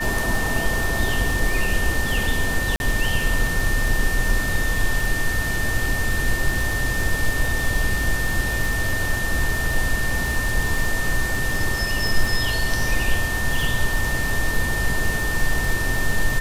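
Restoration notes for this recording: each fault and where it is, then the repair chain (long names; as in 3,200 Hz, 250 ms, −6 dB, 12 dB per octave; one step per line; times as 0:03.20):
surface crackle 55 per second −24 dBFS
whistle 1,800 Hz −25 dBFS
0:02.76–0:02.80: drop-out 41 ms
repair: click removal
notch filter 1,800 Hz, Q 30
repair the gap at 0:02.76, 41 ms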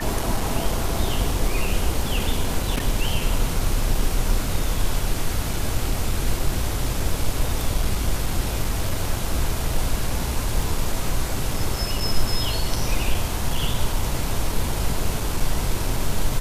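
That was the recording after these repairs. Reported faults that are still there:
none of them is left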